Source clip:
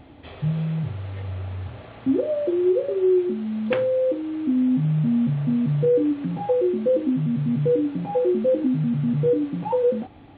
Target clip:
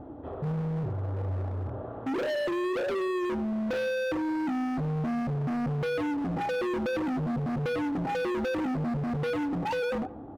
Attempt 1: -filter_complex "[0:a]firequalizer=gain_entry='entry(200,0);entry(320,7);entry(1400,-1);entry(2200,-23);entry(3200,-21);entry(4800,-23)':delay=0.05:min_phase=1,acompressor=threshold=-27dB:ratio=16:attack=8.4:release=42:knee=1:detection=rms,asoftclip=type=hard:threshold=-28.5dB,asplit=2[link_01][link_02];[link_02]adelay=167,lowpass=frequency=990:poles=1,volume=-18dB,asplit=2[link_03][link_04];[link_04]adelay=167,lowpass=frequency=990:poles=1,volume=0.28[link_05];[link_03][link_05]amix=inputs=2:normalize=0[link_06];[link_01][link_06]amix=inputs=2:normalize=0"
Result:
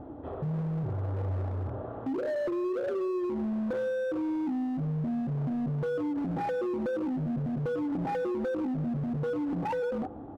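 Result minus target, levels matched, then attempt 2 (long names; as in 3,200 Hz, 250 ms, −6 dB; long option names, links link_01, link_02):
downward compressor: peak gain reduction +10 dB
-filter_complex "[0:a]firequalizer=gain_entry='entry(200,0);entry(320,7);entry(1400,-1);entry(2200,-23);entry(3200,-21);entry(4800,-23)':delay=0.05:min_phase=1,acompressor=threshold=-16.5dB:ratio=16:attack=8.4:release=42:knee=1:detection=rms,asoftclip=type=hard:threshold=-28.5dB,asplit=2[link_01][link_02];[link_02]adelay=167,lowpass=frequency=990:poles=1,volume=-18dB,asplit=2[link_03][link_04];[link_04]adelay=167,lowpass=frequency=990:poles=1,volume=0.28[link_05];[link_03][link_05]amix=inputs=2:normalize=0[link_06];[link_01][link_06]amix=inputs=2:normalize=0"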